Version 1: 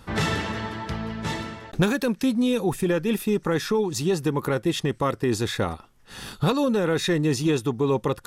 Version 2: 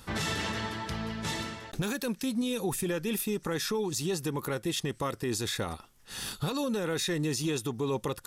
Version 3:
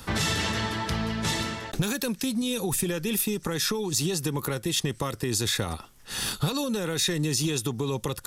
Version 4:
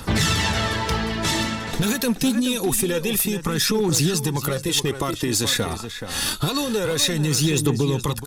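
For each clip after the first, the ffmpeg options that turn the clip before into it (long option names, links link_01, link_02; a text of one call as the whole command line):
ffmpeg -i in.wav -af "highshelf=frequency=3400:gain=11,alimiter=limit=-18dB:level=0:latency=1:release=91,volume=-4.5dB" out.wav
ffmpeg -i in.wav -filter_complex "[0:a]acrossover=split=150|3000[link_01][link_02][link_03];[link_02]acompressor=threshold=-35dB:ratio=6[link_04];[link_01][link_04][link_03]amix=inputs=3:normalize=0,volume=7.5dB" out.wav
ffmpeg -i in.wav -filter_complex "[0:a]asplit=2[link_01][link_02];[link_02]adelay=425.7,volume=-9dB,highshelf=frequency=4000:gain=-9.58[link_03];[link_01][link_03]amix=inputs=2:normalize=0,aphaser=in_gain=1:out_gain=1:delay=4.6:decay=0.41:speed=0.26:type=triangular,aeval=exprs='clip(val(0),-1,0.1)':channel_layout=same,volume=5dB" out.wav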